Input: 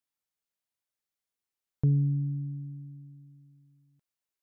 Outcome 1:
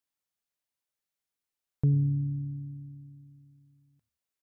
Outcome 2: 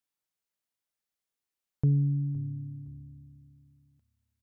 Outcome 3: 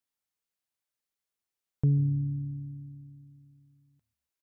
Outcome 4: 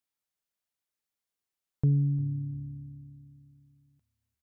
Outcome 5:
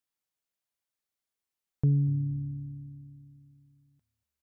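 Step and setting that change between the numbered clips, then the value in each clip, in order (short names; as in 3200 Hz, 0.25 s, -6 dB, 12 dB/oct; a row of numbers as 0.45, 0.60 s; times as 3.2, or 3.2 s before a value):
frequency-shifting echo, time: 89, 514, 138, 349, 236 ms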